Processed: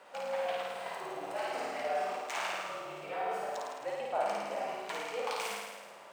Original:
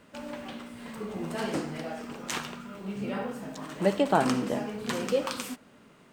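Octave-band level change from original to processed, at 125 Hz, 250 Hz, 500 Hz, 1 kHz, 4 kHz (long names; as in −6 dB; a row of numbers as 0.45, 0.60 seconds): −21.5, −20.0, −4.5, −1.0, −4.0 decibels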